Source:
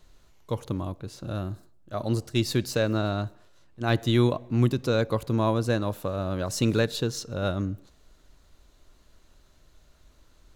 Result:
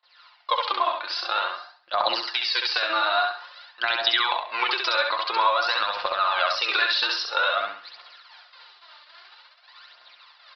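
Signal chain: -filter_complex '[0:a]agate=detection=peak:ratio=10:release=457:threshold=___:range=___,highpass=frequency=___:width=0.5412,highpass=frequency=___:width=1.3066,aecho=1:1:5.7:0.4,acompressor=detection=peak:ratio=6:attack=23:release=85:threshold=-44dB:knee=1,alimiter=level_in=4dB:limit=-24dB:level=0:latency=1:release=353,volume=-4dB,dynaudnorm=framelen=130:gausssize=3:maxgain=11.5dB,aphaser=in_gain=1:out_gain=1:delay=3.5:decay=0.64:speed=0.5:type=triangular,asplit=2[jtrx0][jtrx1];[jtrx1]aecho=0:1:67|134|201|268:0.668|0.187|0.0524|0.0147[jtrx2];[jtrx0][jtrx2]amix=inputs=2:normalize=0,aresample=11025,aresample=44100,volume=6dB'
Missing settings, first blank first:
-53dB, -22dB, 880, 880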